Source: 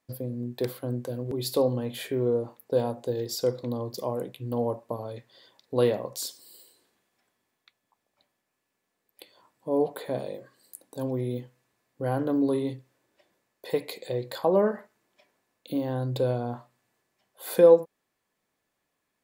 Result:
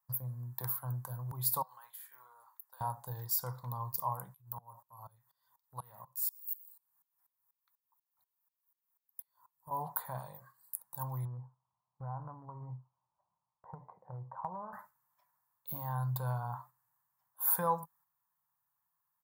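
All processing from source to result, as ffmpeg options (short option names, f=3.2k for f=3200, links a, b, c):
-filter_complex "[0:a]asettb=1/sr,asplit=3[a][b][c];[a]atrim=end=1.624[d];[b]atrim=start=1.62:end=2.81,asetpts=PTS-STARTPTS,afade=t=in:d=0.004:c=qsin,afade=t=out:st=1.186:d=0.004:c=qsin,highpass=1.4k,acompressor=threshold=-46dB:ratio=10:attack=3.2:release=140:knee=1:detection=peak[e];[c]atrim=start=2.806[f];[d][e]acrossfade=d=0.004:c1=hsin:c2=qsin[g];[g][f]acrossfade=d=0.004:c1=qsin:c2=hsin,asettb=1/sr,asplit=3[h][i][j];[h]atrim=end=4.344[k];[i]atrim=start=4.34:end=9.71,asetpts=PTS-STARTPTS,afade=t=in:d=0.004:c=qsin,afade=t=out:st=5.366:d=0.004:c=qsin,highshelf=f=6.6k:g=10.5,acompressor=threshold=-42dB:ratio=1.5:attack=3.2:release=140:knee=1:detection=peak,aeval=exprs='val(0)*pow(10,-23*if(lt(mod(-4.1*n/s,1),2*abs(-4.1)/1000),1-mod(-4.1*n/s,1)/(2*abs(-4.1)/1000),(mod(-4.1*n/s,1)-2*abs(-4.1)/1000)/(1-2*abs(-4.1)/1000))/20)':c=same[l];[j]atrim=start=9.706[m];[k][l]acrossfade=d=0.004:c1=hsin:c2=qsin[n];[n][m]acrossfade=d=0.004:c1=qsin:c2=hsin,asettb=1/sr,asplit=3[o][p][q];[o]atrim=end=11.254[r];[p]atrim=start=11.25:end=14.73,asetpts=PTS-STARTPTS,afade=t=in:d=0.004:c=qsin,afade=t=out:st=3.476:d=0.004:c=qsin,lowpass=f=1k:w=0.5412,lowpass=f=1k:w=1.3066,acompressor=threshold=-28dB:ratio=6:attack=3.2:release=140:knee=1:detection=peak[s];[q]atrim=start=14.726[t];[r][s]acrossfade=d=0.004:c1=hsin:c2=qsin[u];[u][t]acrossfade=d=0.004:c1=qsin:c2=hsin,lowshelf=f=90:g=-11,agate=range=-6dB:threshold=-52dB:ratio=16:detection=peak,firequalizer=gain_entry='entry(160,0);entry(240,-26);entry(420,-28);entry(930,6);entry(2500,-20);entry(4900,-11);entry(15000,14)':delay=0.05:min_phase=1"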